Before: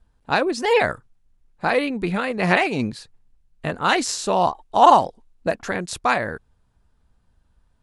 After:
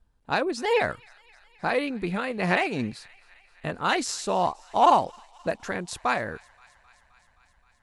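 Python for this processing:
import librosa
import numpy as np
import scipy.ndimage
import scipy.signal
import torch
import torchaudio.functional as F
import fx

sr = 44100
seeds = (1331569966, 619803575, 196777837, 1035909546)

p1 = np.clip(10.0 ** (10.5 / 20.0) * x, -1.0, 1.0) / 10.0 ** (10.5 / 20.0)
p2 = x + (p1 * 10.0 ** (-10.5 / 20.0))
p3 = fx.echo_wet_highpass(p2, sr, ms=262, feedback_pct=74, hz=1400.0, wet_db=-23.5)
y = p3 * 10.0 ** (-7.5 / 20.0)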